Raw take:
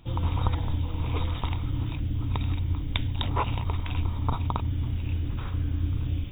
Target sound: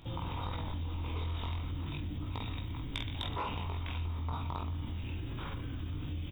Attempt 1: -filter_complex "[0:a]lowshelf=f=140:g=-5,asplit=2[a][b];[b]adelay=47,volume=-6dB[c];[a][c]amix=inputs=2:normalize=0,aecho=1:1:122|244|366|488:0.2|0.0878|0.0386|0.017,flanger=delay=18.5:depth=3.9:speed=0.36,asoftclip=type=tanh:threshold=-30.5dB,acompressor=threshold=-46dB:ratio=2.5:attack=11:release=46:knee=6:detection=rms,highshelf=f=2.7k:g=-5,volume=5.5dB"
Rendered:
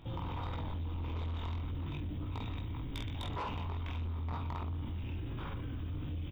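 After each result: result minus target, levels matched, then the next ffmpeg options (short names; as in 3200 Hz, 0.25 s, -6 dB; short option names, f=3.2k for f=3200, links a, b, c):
soft clip: distortion +14 dB; 4000 Hz band -4.5 dB
-filter_complex "[0:a]lowshelf=f=140:g=-5,asplit=2[a][b];[b]adelay=47,volume=-6dB[c];[a][c]amix=inputs=2:normalize=0,aecho=1:1:122|244|366|488:0.2|0.0878|0.0386|0.017,flanger=delay=18.5:depth=3.9:speed=0.36,asoftclip=type=tanh:threshold=-19dB,acompressor=threshold=-46dB:ratio=2.5:attack=11:release=46:knee=6:detection=rms,highshelf=f=2.7k:g=-5,volume=5.5dB"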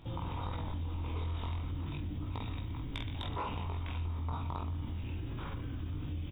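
4000 Hz band -4.0 dB
-filter_complex "[0:a]lowshelf=f=140:g=-5,asplit=2[a][b];[b]adelay=47,volume=-6dB[c];[a][c]amix=inputs=2:normalize=0,aecho=1:1:122|244|366|488:0.2|0.0878|0.0386|0.017,flanger=delay=18.5:depth=3.9:speed=0.36,asoftclip=type=tanh:threshold=-19dB,acompressor=threshold=-46dB:ratio=2.5:attack=11:release=46:knee=6:detection=rms,highshelf=f=2.7k:g=2.5,volume=5.5dB"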